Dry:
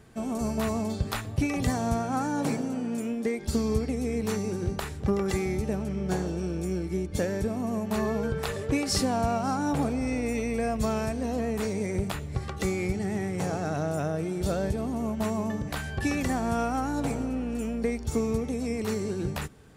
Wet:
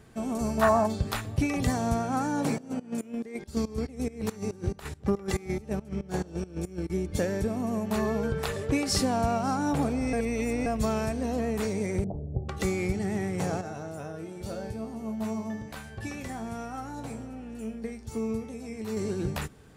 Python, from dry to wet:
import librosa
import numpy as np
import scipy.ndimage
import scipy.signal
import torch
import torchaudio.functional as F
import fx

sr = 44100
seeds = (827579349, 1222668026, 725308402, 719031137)

y = fx.spec_box(x, sr, start_s=0.62, length_s=0.24, low_hz=600.0, high_hz=1900.0, gain_db=13)
y = fx.volume_shaper(y, sr, bpm=140, per_beat=2, depth_db=-19, release_ms=126.0, shape='slow start', at=(2.58, 6.9))
y = fx.steep_lowpass(y, sr, hz=730.0, slope=48, at=(12.04, 12.49))
y = fx.comb_fb(y, sr, f0_hz=110.0, decay_s=0.29, harmonics='all', damping=0.0, mix_pct=80, at=(13.61, 18.97))
y = fx.edit(y, sr, fx.reverse_span(start_s=10.13, length_s=0.53), tone=tone)